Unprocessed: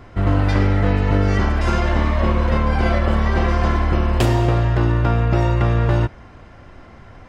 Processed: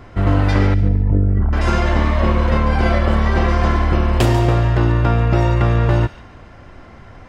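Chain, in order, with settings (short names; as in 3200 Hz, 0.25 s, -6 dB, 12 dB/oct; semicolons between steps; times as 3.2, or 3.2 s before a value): 0.74–1.53 formant sharpening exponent 2; thin delay 0.143 s, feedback 30%, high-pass 2000 Hz, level -12 dB; gain +2 dB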